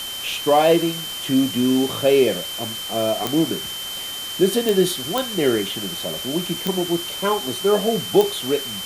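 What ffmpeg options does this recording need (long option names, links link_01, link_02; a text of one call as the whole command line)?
ffmpeg -i in.wav -af "adeclick=threshold=4,bandreject=frequency=3100:width=30,afwtdn=0.022" out.wav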